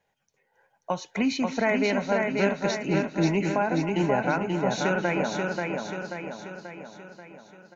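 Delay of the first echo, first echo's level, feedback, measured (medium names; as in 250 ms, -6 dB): 272 ms, -14.5 dB, no regular repeats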